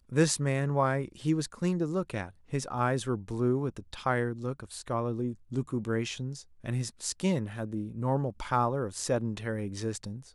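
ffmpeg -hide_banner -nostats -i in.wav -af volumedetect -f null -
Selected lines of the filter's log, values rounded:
mean_volume: -31.0 dB
max_volume: -11.0 dB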